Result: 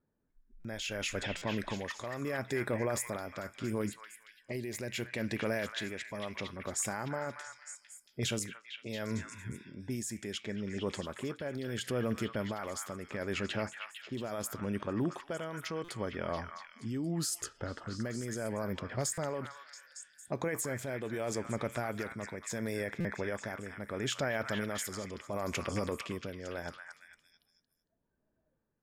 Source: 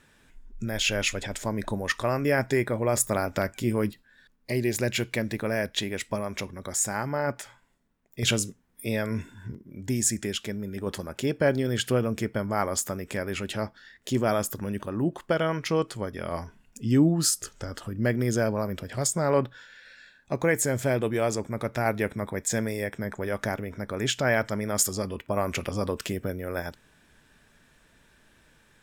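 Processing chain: spectral noise reduction 13 dB; level-controlled noise filter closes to 610 Hz, open at -24.5 dBFS; bass shelf 86 Hz -6.5 dB; peak limiter -21.5 dBFS, peak gain reduction 11 dB; tremolo 0.74 Hz, depth 53%; on a send: repeats whose band climbs or falls 227 ms, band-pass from 1.5 kHz, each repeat 0.7 oct, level -3 dB; on the sum: buffer glitch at 0.60/1.37/15.84/19.13/23.00 s, samples 256, times 7; trim -2 dB

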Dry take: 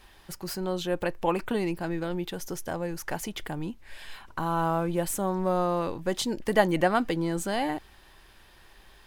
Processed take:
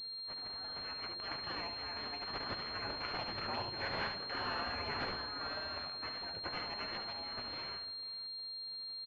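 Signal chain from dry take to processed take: Doppler pass-by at 3.73 s, 9 m/s, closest 5.4 m; spectral gate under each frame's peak -25 dB weak; high-pass 68 Hz; in parallel at +0.5 dB: peak limiter -44.5 dBFS, peak gain reduction 10.5 dB; on the sum: wow and flutter 46 cents; flange 0.28 Hz, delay 8.5 ms, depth 5.6 ms, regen -43%; on a send: multi-tap echo 71/189/495 ms -6/-17.5/-16.5 dB; on the sum: class-D stage that switches slowly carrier 4.2 kHz; trim +15.5 dB

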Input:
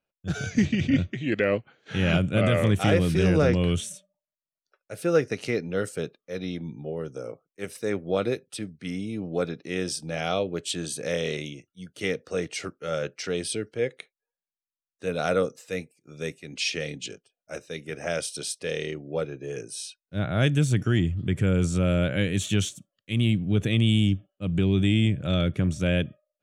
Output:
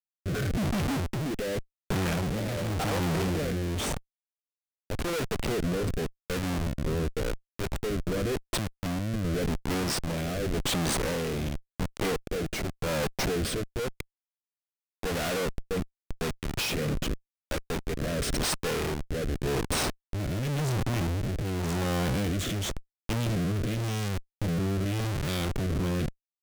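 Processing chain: Schmitt trigger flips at -34.5 dBFS; rotary cabinet horn 0.9 Hz

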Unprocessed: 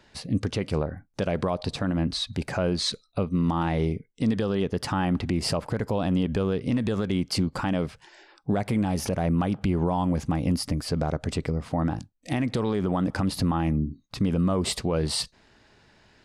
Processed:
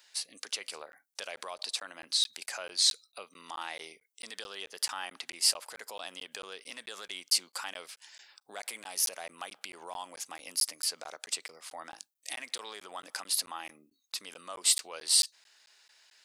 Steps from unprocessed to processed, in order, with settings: high-pass 490 Hz 12 dB/octave; differentiator; crackling interface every 0.22 s, samples 512, zero, from 0.92 s; trim +7 dB

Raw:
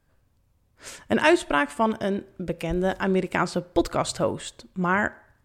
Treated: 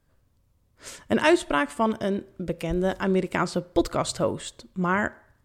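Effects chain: graphic EQ with 31 bands 800 Hz -4 dB, 1.6 kHz -3 dB, 2.5 kHz -3 dB

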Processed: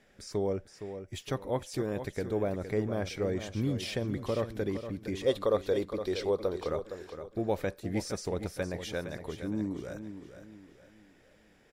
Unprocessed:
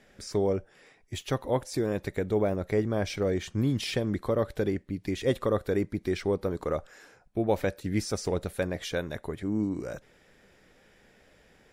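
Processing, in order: 5.26–6.67 s: graphic EQ 125/250/500/1000/2000/4000 Hz -7/-4/+6/+3/-4/+9 dB; feedback delay 464 ms, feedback 37%, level -10 dB; trim -4.5 dB

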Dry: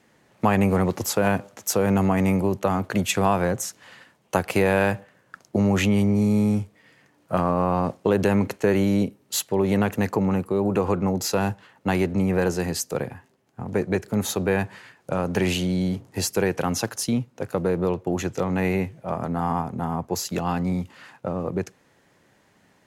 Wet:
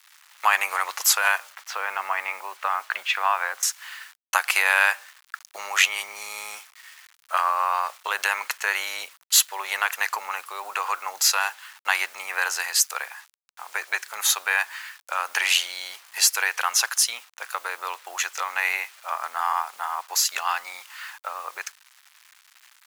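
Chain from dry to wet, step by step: 1.53–3.63 s: distance through air 330 m; bit crusher 9-bit; high-pass 1.1 kHz 24 dB/octave; trim +9 dB

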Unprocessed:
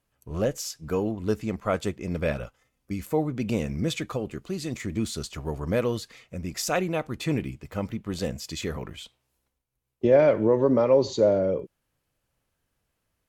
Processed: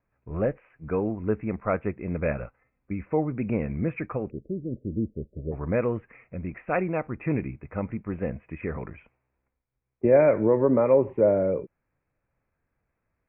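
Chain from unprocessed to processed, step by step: steep low-pass 2.5 kHz 96 dB/octave, from 4.29 s 600 Hz, from 5.51 s 2.5 kHz

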